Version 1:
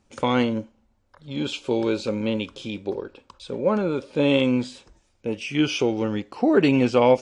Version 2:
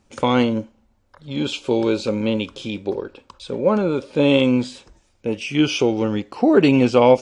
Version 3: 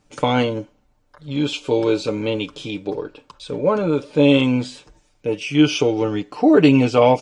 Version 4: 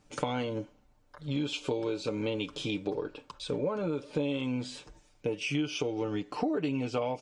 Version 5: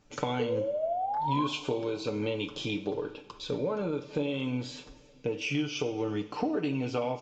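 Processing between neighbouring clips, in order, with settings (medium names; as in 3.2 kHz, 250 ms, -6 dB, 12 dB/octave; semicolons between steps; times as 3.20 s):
dynamic bell 1.8 kHz, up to -4 dB, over -43 dBFS, Q 2.8; trim +4 dB
comb 6.7 ms, depth 68%; trim -1 dB
compression 10:1, threshold -25 dBFS, peak gain reduction 17 dB; trim -3 dB
painted sound rise, 0.39–1.47 s, 440–1100 Hz -31 dBFS; reverberation, pre-delay 3 ms, DRR 8.5 dB; resampled via 16 kHz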